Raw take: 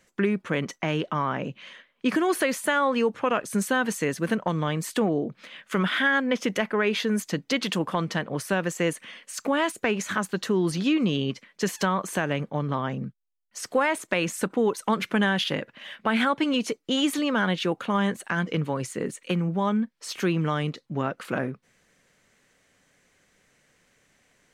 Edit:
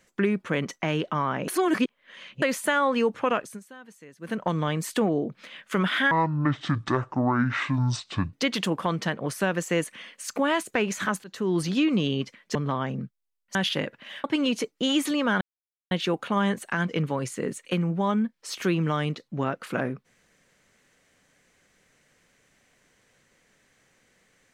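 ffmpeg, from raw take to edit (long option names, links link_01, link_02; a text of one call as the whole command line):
ffmpeg -i in.wav -filter_complex "[0:a]asplit=12[link_01][link_02][link_03][link_04][link_05][link_06][link_07][link_08][link_09][link_10][link_11][link_12];[link_01]atrim=end=1.482[link_13];[link_02]atrim=start=1.478:end=2.422,asetpts=PTS-STARTPTS,areverse[link_14];[link_03]atrim=start=2.418:end=3.6,asetpts=PTS-STARTPTS,afade=type=out:start_time=0.912:duration=0.27:silence=0.0794328[link_15];[link_04]atrim=start=3.6:end=4.19,asetpts=PTS-STARTPTS,volume=-22dB[link_16];[link_05]atrim=start=4.19:end=6.114,asetpts=PTS-STARTPTS,afade=type=in:duration=0.27:silence=0.0794328[link_17];[link_06]atrim=start=6.11:end=7.42,asetpts=PTS-STARTPTS,asetrate=26019,aresample=44100[link_18];[link_07]atrim=start=7.416:end=10.33,asetpts=PTS-STARTPTS,afade=type=out:start_time=2.91:duration=0.004:curve=hsin:silence=0.1[link_19];[link_08]atrim=start=10.33:end=11.642,asetpts=PTS-STARTPTS,afade=type=in:duration=0.32:silence=0.1[link_20];[link_09]atrim=start=12.578:end=13.582[link_21];[link_10]atrim=start=15.298:end=15.992[link_22];[link_11]atrim=start=16.318:end=17.49,asetpts=PTS-STARTPTS,afade=type=out:start_time=1.168:duration=0.004:curve=hsin,apad=pad_dur=0.5[link_23];[link_12]atrim=start=17.49,asetpts=PTS-STARTPTS,afade=type=in:duration=0.004:curve=hsin[link_24];[link_13][link_14]acrossfade=duration=0.004:curve1=hsin:curve2=hsin[link_25];[link_15][link_16][link_17]concat=n=3:v=0:a=1[link_26];[link_25][link_26]acrossfade=duration=0.004:curve1=hsin:curve2=hsin[link_27];[link_27][link_18]acrossfade=duration=0.004:curve1=hsin:curve2=hsin[link_28];[link_19][link_20]concat=n=2:v=0:a=1[link_29];[link_28][link_29]acrossfade=duration=0.004:curve1=hsin:curve2=hsin[link_30];[link_30][link_21]acrossfade=duration=0.004:curve1=hsin:curve2=hsin[link_31];[link_31][link_22]acrossfade=duration=0.004:curve1=hsin:curve2=hsin[link_32];[link_23][link_24]concat=n=2:v=0:a=1[link_33];[link_32][link_33]acrossfade=duration=0.004:curve1=hsin:curve2=hsin" out.wav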